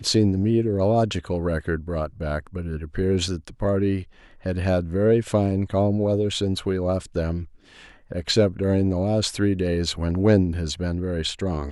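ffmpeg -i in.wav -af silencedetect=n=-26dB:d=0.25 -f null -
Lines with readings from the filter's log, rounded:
silence_start: 4.00
silence_end: 4.46 | silence_duration: 0.46
silence_start: 7.42
silence_end: 8.12 | silence_duration: 0.70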